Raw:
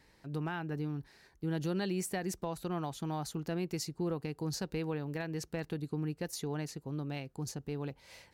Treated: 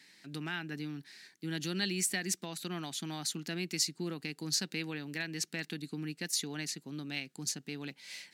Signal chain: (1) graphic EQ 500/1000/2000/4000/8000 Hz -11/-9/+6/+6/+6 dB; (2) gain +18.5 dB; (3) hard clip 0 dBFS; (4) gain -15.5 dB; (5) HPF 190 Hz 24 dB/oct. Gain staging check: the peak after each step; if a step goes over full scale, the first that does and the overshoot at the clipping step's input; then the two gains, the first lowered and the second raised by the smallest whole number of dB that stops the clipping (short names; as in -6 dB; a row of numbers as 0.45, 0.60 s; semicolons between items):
-20.0, -1.5, -1.5, -17.0, -17.0 dBFS; no overload